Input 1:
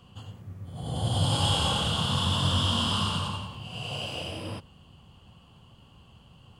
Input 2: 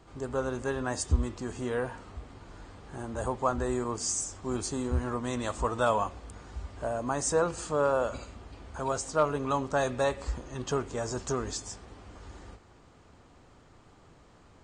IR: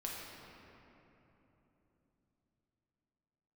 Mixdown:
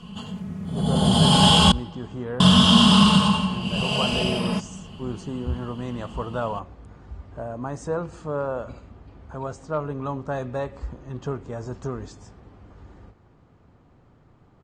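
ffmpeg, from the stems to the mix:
-filter_complex "[0:a]equalizer=f=190:w=4.1:g=9.5,aecho=1:1:4.7:0.89,acontrast=80,volume=0.5dB,asplit=3[a][b][c];[a]atrim=end=1.72,asetpts=PTS-STARTPTS,afade=t=out:st=1.716:d=0.004:c=hsin[d];[b]atrim=start=1.72:end=2.4,asetpts=PTS-STARTPTS,volume=0[e];[c]atrim=start=2.4,asetpts=PTS-STARTPTS,afade=t=in:d=0.004:c=hsin[f];[d][e][f]concat=n=3:v=0:a=1,asplit=2[g][h];[h]volume=-22.5dB[i];[1:a]lowpass=f=1.7k:p=1,equalizer=f=140:w=0.87:g=7,adelay=550,volume=-1.5dB[j];[2:a]atrim=start_sample=2205[k];[i][k]afir=irnorm=-1:irlink=0[l];[g][j][l]amix=inputs=3:normalize=0,lowpass=9.9k"

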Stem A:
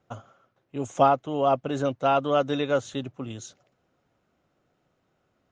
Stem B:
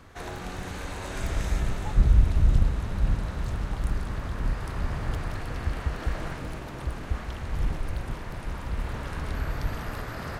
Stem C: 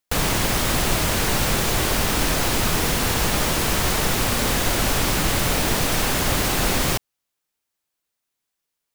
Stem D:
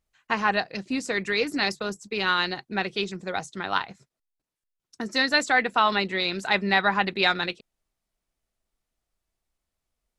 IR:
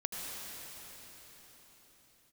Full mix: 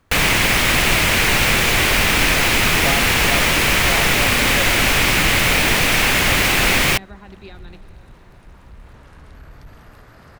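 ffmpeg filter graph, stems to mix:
-filter_complex "[0:a]adelay=1850,volume=-6.5dB[a];[1:a]asoftclip=type=tanh:threshold=-22.5dB,volume=-9.5dB[b];[2:a]equalizer=f=2.3k:t=o:w=1.1:g=11.5,volume=2dB[c];[3:a]acrossover=split=440[d][e];[e]acompressor=threshold=-34dB:ratio=6[f];[d][f]amix=inputs=2:normalize=0,adelay=250,volume=-12dB,asplit=2[g][h];[h]volume=-11dB[i];[4:a]atrim=start_sample=2205[j];[i][j]afir=irnorm=-1:irlink=0[k];[a][b][c][g][k]amix=inputs=5:normalize=0"

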